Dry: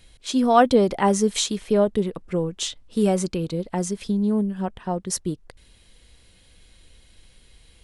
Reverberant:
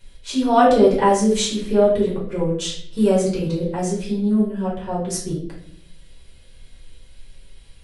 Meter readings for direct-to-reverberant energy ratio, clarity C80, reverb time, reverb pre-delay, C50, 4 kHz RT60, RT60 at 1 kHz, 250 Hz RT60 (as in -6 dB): -6.5 dB, 9.0 dB, 0.60 s, 5 ms, 4.5 dB, 0.45 s, 0.50 s, 0.90 s